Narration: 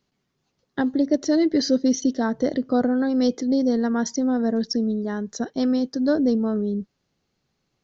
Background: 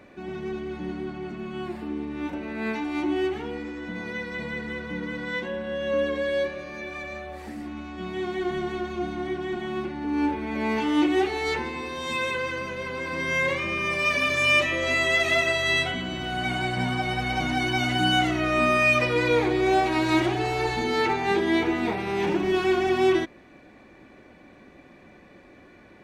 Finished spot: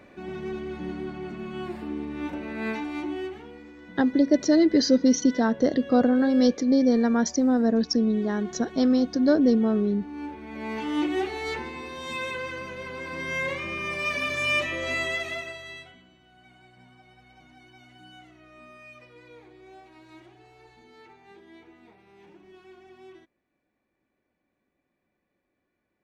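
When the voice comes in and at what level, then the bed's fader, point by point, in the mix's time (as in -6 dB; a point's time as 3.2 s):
3.20 s, +0.5 dB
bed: 2.73 s -1 dB
3.53 s -11.5 dB
10.27 s -11.5 dB
10.94 s -4.5 dB
15.01 s -4.5 dB
16.2 s -28 dB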